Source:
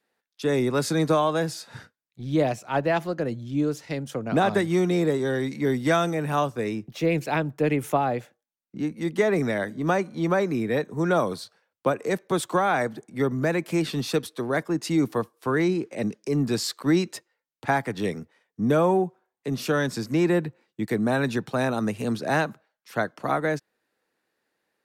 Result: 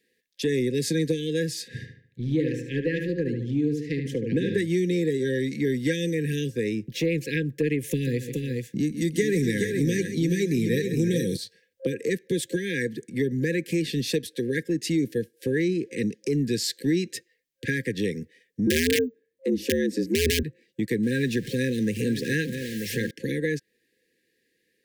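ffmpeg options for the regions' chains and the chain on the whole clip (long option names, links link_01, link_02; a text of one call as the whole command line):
ffmpeg -i in.wav -filter_complex "[0:a]asettb=1/sr,asplit=3[link_01][link_02][link_03];[link_01]atrim=end=1.684[link_04];[link_02]atrim=start=1.68:end=4.58,asetpts=PTS-STARTPTS,afade=type=in:duration=0.004:curve=qsin,afade=type=out:start_time=2.896:duration=0.004:curve=qsin,highshelf=frequency=3600:gain=-9.5,asplit=2[link_05][link_06];[link_06]adelay=74,lowpass=frequency=3400:poles=1,volume=-5.5dB,asplit=2[link_07][link_08];[link_08]adelay=74,lowpass=frequency=3400:poles=1,volume=0.41,asplit=2[link_09][link_10];[link_10]adelay=74,lowpass=frequency=3400:poles=1,volume=0.41,asplit=2[link_11][link_12];[link_12]adelay=74,lowpass=frequency=3400:poles=1,volume=0.41,asplit=2[link_13][link_14];[link_14]adelay=74,lowpass=frequency=3400:poles=1,volume=0.41[link_15];[link_05][link_07][link_09][link_11][link_13][link_15]amix=inputs=6:normalize=0,atrim=end_sample=127890[link_16];[link_03]atrim=start=4.576[link_17];[link_04][link_16]acrossfade=duration=0.004:curve1=hsin:curve2=qsin[link_18];[link_18][link_17]acrossfade=duration=0.004:curve1=qsin:curve2=hsin,asettb=1/sr,asplit=3[link_19][link_20][link_21];[link_19]atrim=end=7.914[link_22];[link_20]atrim=start=7.91:end=11.37,asetpts=PTS-STARTPTS,afade=type=in:duration=0.004:curve=qsin,afade=type=out:start_time=3.456:duration=0.004:curve=qsin,bass=frequency=250:gain=6,treble=frequency=4000:gain=11,aecho=1:1:137|349|423:0.224|0.119|0.473,atrim=end_sample=152586[link_23];[link_21]atrim=start=11.366[link_24];[link_22][link_23]acrossfade=duration=0.004:curve1=hsin:curve2=qsin[link_25];[link_25][link_24]acrossfade=duration=0.004:curve1=qsin:curve2=hsin,asettb=1/sr,asplit=3[link_26][link_27][link_28];[link_26]atrim=end=18.674[link_29];[link_27]atrim=start=18.67:end=20.43,asetpts=PTS-STARTPTS,afade=type=in:duration=0.004:curve=qsin,afade=type=out:start_time=1.756:duration=0.004:curve=qsin,tiltshelf=frequency=770:gain=5.5,aeval=exprs='(mod(3.76*val(0)+1,2)-1)/3.76':channel_layout=same,afreqshift=77[link_30];[link_28]atrim=start=20.426[link_31];[link_29][link_30]acrossfade=duration=0.004:curve1=hsin:curve2=qsin[link_32];[link_32][link_31]acrossfade=duration=0.004:curve1=qsin:curve2=hsin,asettb=1/sr,asplit=3[link_33][link_34][link_35];[link_33]atrim=end=21.034[link_36];[link_34]atrim=start=21.03:end=23.11,asetpts=PTS-STARTPTS,afade=type=in:duration=0.004:curve=qsin,afade=type=out:start_time=2.076:duration=0.004:curve=qsin,aeval=exprs='val(0)+0.5*0.015*sgn(val(0))':channel_layout=same,aecho=1:1:935:0.251,atrim=end_sample=91728[link_37];[link_35]atrim=start=23.106[link_38];[link_36][link_37]acrossfade=duration=0.004:curve1=hsin:curve2=qsin[link_39];[link_39][link_38]acrossfade=duration=0.004:curve1=qsin:curve2=hsin,afftfilt=real='re*(1-between(b*sr/4096,530,1600))':imag='im*(1-between(b*sr/4096,530,1600))':win_size=4096:overlap=0.75,acompressor=threshold=-34dB:ratio=2,volume=6.5dB" out.wav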